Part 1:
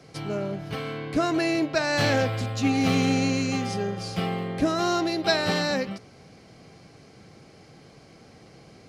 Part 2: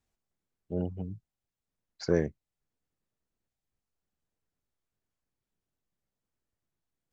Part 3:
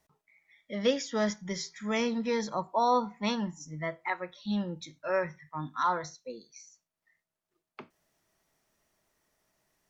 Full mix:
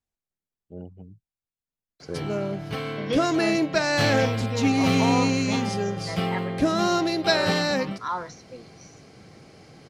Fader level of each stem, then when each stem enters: +1.5 dB, -7.5 dB, -1.5 dB; 2.00 s, 0.00 s, 2.25 s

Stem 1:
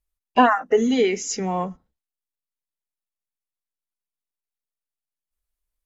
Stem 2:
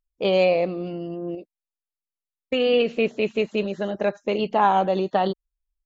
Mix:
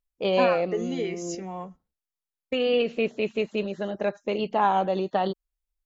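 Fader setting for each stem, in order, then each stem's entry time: -11.0 dB, -3.5 dB; 0.00 s, 0.00 s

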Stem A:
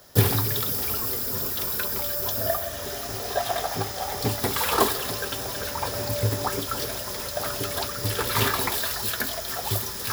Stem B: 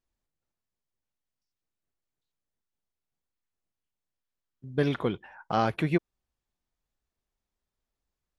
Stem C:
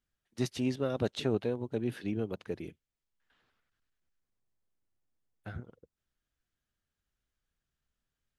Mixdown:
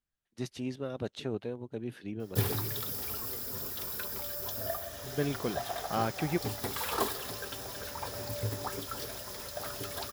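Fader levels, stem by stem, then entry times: -10.0 dB, -5.5 dB, -5.0 dB; 2.20 s, 0.40 s, 0.00 s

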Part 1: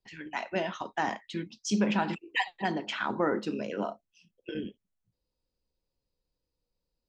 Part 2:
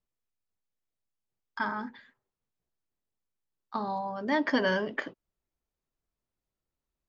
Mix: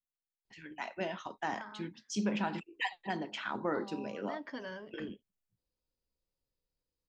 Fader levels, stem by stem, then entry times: -6.0 dB, -16.5 dB; 0.45 s, 0.00 s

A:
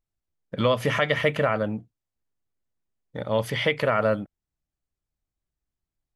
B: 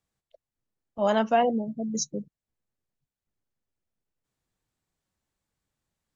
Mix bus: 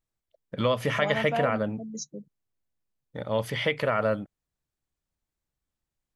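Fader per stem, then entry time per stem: -3.0 dB, -7.5 dB; 0.00 s, 0.00 s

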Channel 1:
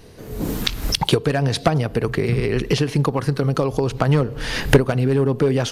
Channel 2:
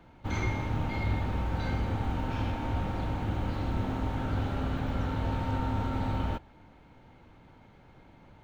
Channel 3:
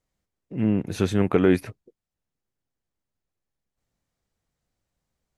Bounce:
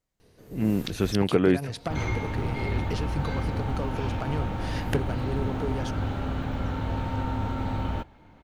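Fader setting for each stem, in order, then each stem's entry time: -14.5 dB, +1.5 dB, -2.5 dB; 0.20 s, 1.65 s, 0.00 s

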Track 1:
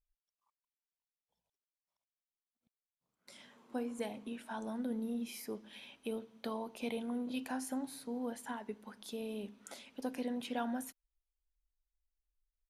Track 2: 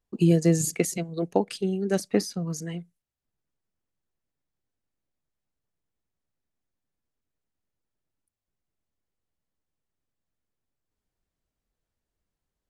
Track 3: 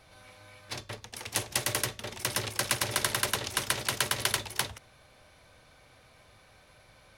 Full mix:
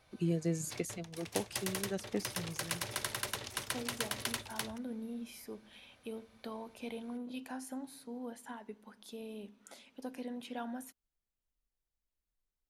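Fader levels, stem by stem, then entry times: -4.0 dB, -13.0 dB, -9.0 dB; 0.00 s, 0.00 s, 0.00 s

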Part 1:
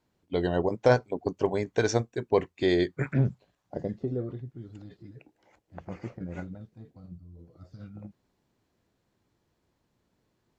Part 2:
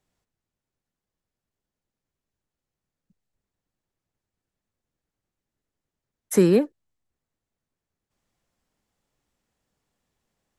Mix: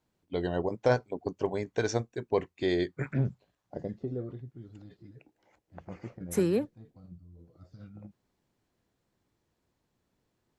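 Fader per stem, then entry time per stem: -4.0 dB, -9.0 dB; 0.00 s, 0.00 s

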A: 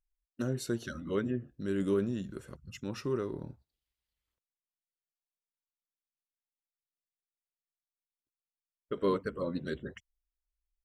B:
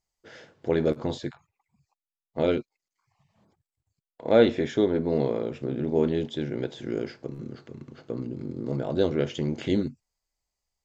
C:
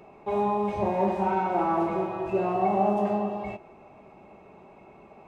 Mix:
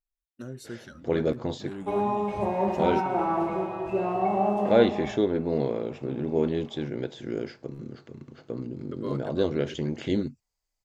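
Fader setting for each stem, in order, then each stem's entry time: -6.0 dB, -1.5 dB, -1.0 dB; 0.00 s, 0.40 s, 1.60 s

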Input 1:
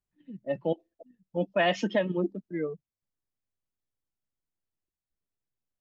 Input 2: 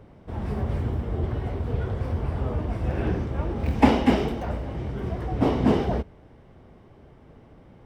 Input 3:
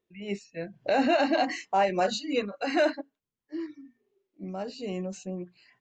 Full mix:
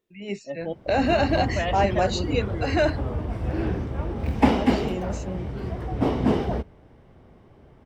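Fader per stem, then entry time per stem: -3.5 dB, -1.0 dB, +2.0 dB; 0.00 s, 0.60 s, 0.00 s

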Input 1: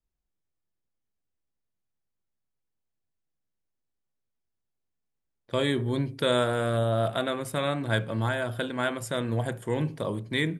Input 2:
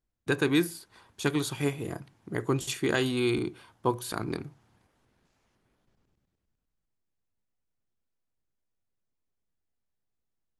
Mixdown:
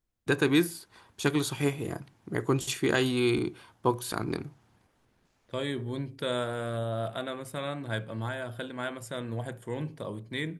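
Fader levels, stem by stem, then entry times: -6.5 dB, +1.0 dB; 0.00 s, 0.00 s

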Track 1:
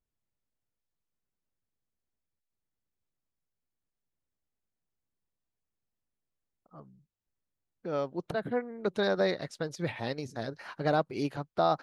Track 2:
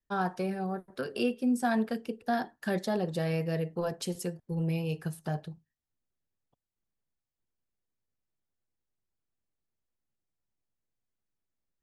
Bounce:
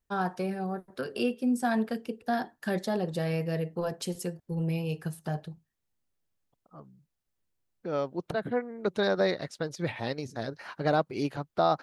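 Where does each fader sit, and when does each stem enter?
+1.5 dB, +0.5 dB; 0.00 s, 0.00 s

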